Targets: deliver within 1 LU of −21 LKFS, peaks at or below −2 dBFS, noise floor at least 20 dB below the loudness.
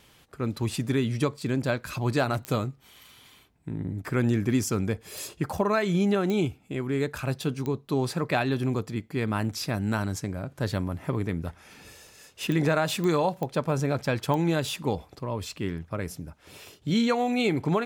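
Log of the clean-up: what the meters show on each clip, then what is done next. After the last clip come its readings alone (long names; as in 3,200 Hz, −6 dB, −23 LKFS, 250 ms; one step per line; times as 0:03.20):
number of clicks 8; integrated loudness −28.0 LKFS; sample peak −11.5 dBFS; target loudness −21.0 LKFS
→ click removal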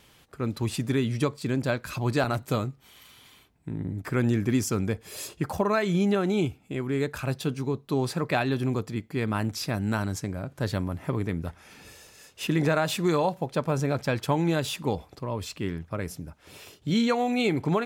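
number of clicks 0; integrated loudness −28.0 LKFS; sample peak −11.5 dBFS; target loudness −21.0 LKFS
→ level +7 dB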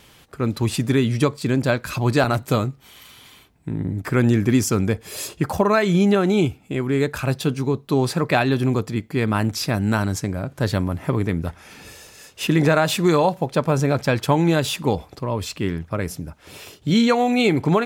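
integrated loudness −21.0 LKFS; sample peak −4.5 dBFS; background noise floor −51 dBFS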